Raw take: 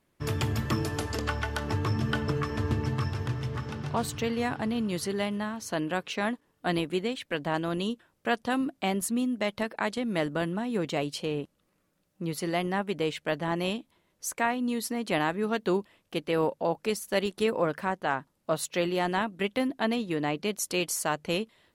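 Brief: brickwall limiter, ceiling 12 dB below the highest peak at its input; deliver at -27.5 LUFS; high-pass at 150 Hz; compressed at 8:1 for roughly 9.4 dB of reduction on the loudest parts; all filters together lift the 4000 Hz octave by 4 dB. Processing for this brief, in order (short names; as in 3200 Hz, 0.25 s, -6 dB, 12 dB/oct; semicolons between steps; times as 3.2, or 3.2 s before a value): HPF 150 Hz; bell 4000 Hz +5.5 dB; compressor 8:1, threshold -31 dBFS; gain +11.5 dB; limiter -17 dBFS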